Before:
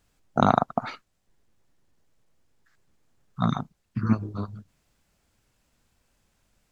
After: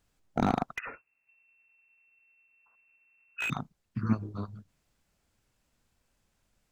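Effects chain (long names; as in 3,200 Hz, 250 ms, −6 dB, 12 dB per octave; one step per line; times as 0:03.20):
0:00.76–0:03.50: voice inversion scrambler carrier 2,700 Hz
slew-rate limiting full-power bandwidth 140 Hz
level −5 dB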